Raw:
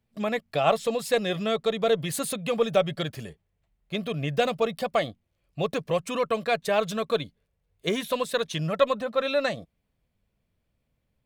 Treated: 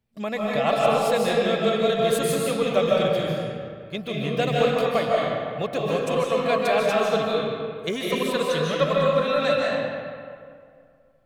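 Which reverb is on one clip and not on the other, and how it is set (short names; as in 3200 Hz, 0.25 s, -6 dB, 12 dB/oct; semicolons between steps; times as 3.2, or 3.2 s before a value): digital reverb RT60 2.2 s, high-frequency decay 0.6×, pre-delay 0.11 s, DRR -4.5 dB; gain -1.5 dB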